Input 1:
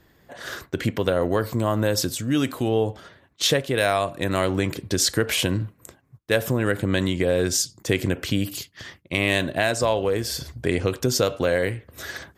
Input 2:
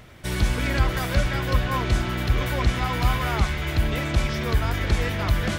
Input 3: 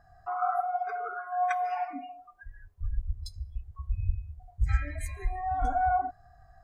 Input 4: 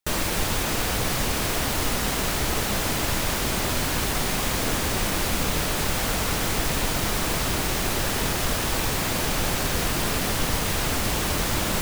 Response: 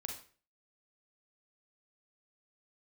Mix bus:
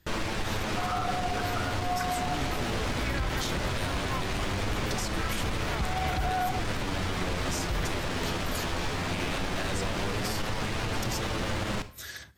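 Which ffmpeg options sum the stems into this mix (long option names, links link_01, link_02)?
-filter_complex "[0:a]equalizer=frequency=550:width=0.32:gain=-11,acompressor=threshold=-32dB:ratio=6,volume=-3dB,asplit=3[link_01][link_02][link_03];[link_02]volume=-12.5dB[link_04];[1:a]adelay=2400,volume=-2.5dB[link_05];[2:a]equalizer=frequency=1200:width_type=o:width=2.8:gain=13,adelay=500,volume=-10.5dB[link_06];[3:a]flanger=delay=9:depth=2.9:regen=45:speed=0.18:shape=sinusoidal,adynamicsmooth=sensitivity=4.5:basefreq=3100,volume=-3dB,asplit=2[link_07][link_08];[link_08]volume=-5dB[link_09];[link_03]apad=whole_len=352293[link_10];[link_05][link_10]sidechaincompress=threshold=-49dB:ratio=8:attack=16:release=170[link_11];[4:a]atrim=start_sample=2205[link_12];[link_04][link_09]amix=inputs=2:normalize=0[link_13];[link_13][link_12]afir=irnorm=-1:irlink=0[link_14];[link_01][link_11][link_06][link_07][link_14]amix=inputs=5:normalize=0,alimiter=limit=-20.5dB:level=0:latency=1:release=52"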